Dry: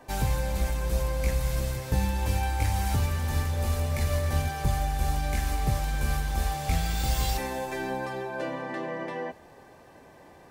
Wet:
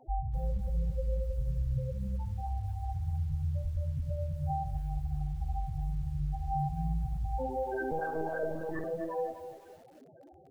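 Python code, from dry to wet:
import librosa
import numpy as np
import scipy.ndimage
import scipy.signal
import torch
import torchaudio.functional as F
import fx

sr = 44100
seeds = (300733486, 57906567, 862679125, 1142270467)

y = fx.dynamic_eq(x, sr, hz=160.0, q=5.7, threshold_db=-48.0, ratio=4.0, max_db=6)
y = fx.over_compress(y, sr, threshold_db=-30.0, ratio=-1.0)
y = fx.spec_topn(y, sr, count=4)
y = fx.air_absorb(y, sr, metres=230.0, at=(1.77, 3.48))
y = fx.echo_feedback(y, sr, ms=68, feedback_pct=22, wet_db=-11.5)
y = fx.lpc_monotone(y, sr, seeds[0], pitch_hz=160.0, order=10, at=(7.91, 8.84))
y = fx.echo_crushed(y, sr, ms=252, feedback_pct=35, bits=9, wet_db=-10.5)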